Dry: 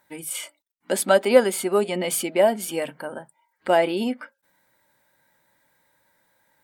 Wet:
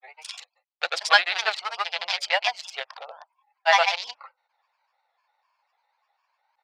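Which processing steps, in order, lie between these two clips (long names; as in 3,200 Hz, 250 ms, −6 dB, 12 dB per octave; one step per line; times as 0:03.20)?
adaptive Wiener filter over 25 samples
elliptic band-pass filter 740–5,000 Hz, stop band 40 dB
spectral tilt +5.5 dB per octave
granular cloud, grains 20 per second, pitch spread up and down by 3 semitones
level +6 dB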